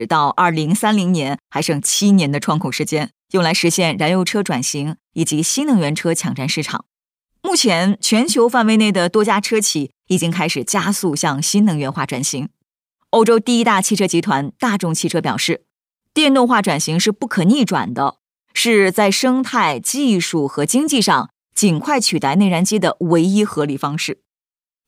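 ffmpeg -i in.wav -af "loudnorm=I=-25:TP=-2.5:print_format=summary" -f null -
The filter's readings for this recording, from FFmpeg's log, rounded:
Input Integrated:    -16.3 LUFS
Input True Peak:      -2.1 dBTP
Input LRA:             2.3 LU
Input Threshold:     -26.4 LUFS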